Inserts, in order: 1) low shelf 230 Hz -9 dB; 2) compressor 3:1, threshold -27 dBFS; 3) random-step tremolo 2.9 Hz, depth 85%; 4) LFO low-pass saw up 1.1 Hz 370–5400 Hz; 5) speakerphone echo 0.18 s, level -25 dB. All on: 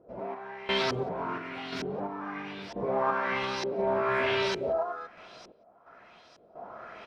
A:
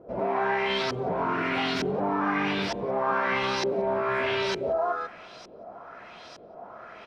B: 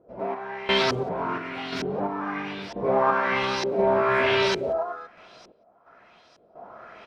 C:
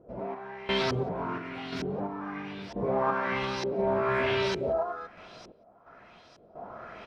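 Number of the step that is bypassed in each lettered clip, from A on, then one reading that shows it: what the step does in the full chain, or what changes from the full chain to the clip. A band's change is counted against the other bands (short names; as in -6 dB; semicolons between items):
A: 3, momentary loudness spread change +2 LU; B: 2, mean gain reduction 4.0 dB; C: 1, 125 Hz band +5.5 dB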